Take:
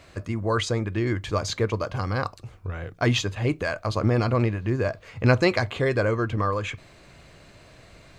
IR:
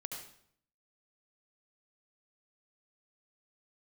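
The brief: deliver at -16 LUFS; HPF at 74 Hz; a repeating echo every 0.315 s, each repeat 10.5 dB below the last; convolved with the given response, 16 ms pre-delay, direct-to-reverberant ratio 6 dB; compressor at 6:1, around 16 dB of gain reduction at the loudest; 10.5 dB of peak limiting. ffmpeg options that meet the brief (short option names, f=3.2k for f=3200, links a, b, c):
-filter_complex "[0:a]highpass=74,acompressor=threshold=-31dB:ratio=6,alimiter=level_in=3.5dB:limit=-24dB:level=0:latency=1,volume=-3.5dB,aecho=1:1:315|630|945:0.299|0.0896|0.0269,asplit=2[a][b];[1:a]atrim=start_sample=2205,adelay=16[c];[b][c]afir=irnorm=-1:irlink=0,volume=-4.5dB[d];[a][d]amix=inputs=2:normalize=0,volume=20.5dB"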